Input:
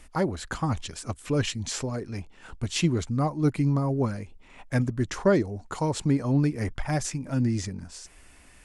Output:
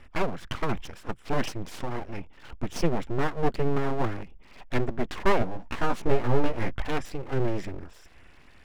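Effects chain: polynomial smoothing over 25 samples; full-wave rectifier; 5.39–6.8 doubler 17 ms -2.5 dB; gain +2 dB

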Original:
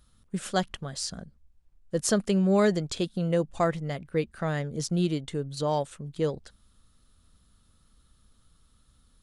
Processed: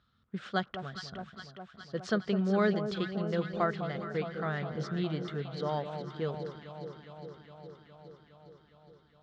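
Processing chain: speaker cabinet 110–4000 Hz, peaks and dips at 170 Hz -4 dB, 300 Hz -7 dB, 540 Hz -6 dB, 910 Hz -4 dB, 1400 Hz +5 dB, 2600 Hz -4 dB; echo with dull and thin repeats by turns 0.206 s, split 1100 Hz, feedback 84%, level -8 dB; gain -3 dB

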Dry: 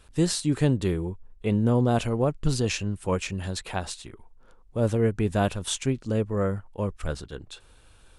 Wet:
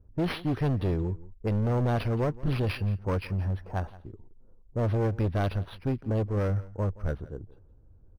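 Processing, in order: low-pass opened by the level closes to 340 Hz, open at -18 dBFS; bell 97 Hz +6.5 dB 0.59 oct; hard clip -22 dBFS, distortion -8 dB; echo 0.172 s -19.5 dB; decimation joined by straight lines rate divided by 6×; gain -1 dB

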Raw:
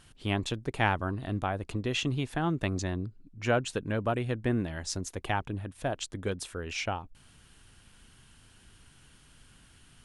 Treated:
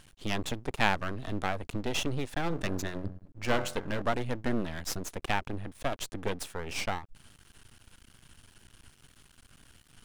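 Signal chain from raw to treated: 2.48–4.02 de-hum 45.8 Hz, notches 37; half-wave rectifier; gain +4 dB

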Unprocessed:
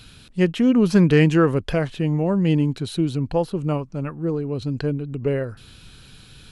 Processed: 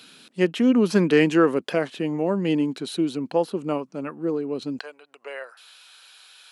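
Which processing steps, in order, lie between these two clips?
HPF 220 Hz 24 dB/oct, from 4.79 s 700 Hz

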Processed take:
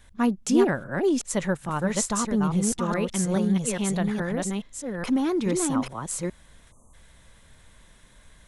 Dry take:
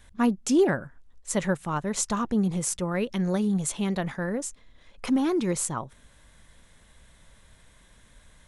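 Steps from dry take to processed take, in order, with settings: reverse delay 0.42 s, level -2.5 dB; spectral delete 6.72–6.94, 1300–5900 Hz

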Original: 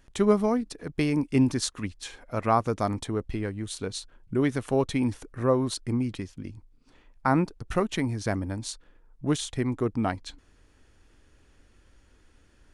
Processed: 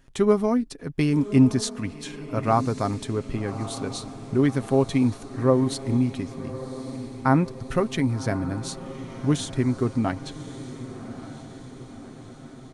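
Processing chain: bell 180 Hz +4 dB 1.6 oct; comb 7.5 ms, depth 35%; on a send: diffused feedback echo 1.139 s, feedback 59%, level -13.5 dB

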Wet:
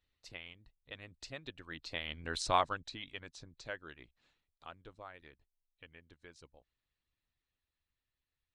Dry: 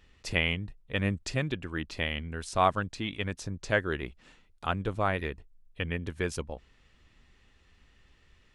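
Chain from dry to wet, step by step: Doppler pass-by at 2.38, 10 m/s, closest 1.5 m; thirty-one-band EQ 200 Hz -11 dB, 400 Hz -4 dB, 4000 Hz +9 dB, 10000 Hz -10 dB; in parallel at -3 dB: compressor, threshold -55 dBFS, peak gain reduction 29 dB; on the sum: harmonic-percussive split harmonic -11 dB; gain +2.5 dB

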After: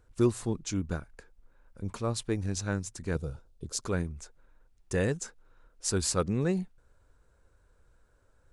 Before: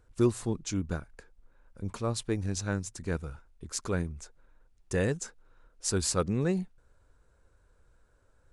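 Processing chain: 3.15–3.84 ten-band EQ 125 Hz +6 dB, 500 Hz +7 dB, 1000 Hz -4 dB, 2000 Hz -10 dB, 4000 Hz +4 dB

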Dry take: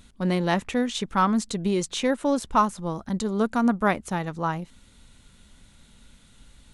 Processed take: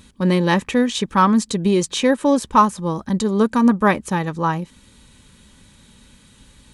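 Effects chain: notch comb 700 Hz; gain +7.5 dB

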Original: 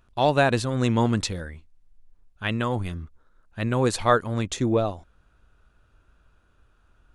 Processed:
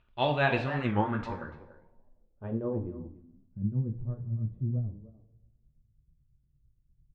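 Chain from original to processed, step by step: tremolo 9 Hz, depth 61%; speakerphone echo 0.29 s, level -11 dB; two-slope reverb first 0.42 s, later 1.5 s, from -16 dB, DRR 2 dB; low-pass sweep 2900 Hz -> 140 Hz, 0.46–4; record warp 45 rpm, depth 160 cents; gain -6.5 dB

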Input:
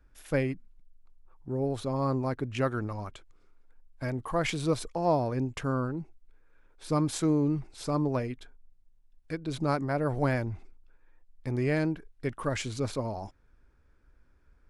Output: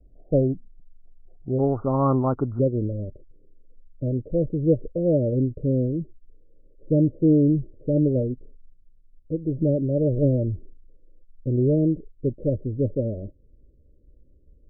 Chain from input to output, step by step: Chebyshev low-pass 730 Hz, order 8, from 1.58 s 1400 Hz, from 2.58 s 600 Hz; gain +8.5 dB

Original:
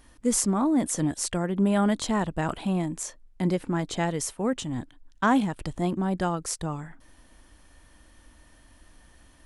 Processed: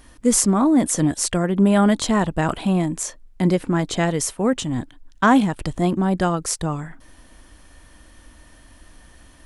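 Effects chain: notch 860 Hz, Q 21; gain +7 dB

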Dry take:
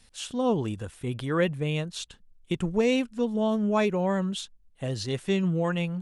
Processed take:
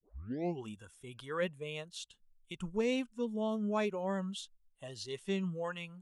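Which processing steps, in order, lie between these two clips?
tape start at the beginning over 0.64 s; spectral noise reduction 11 dB; gain -8.5 dB

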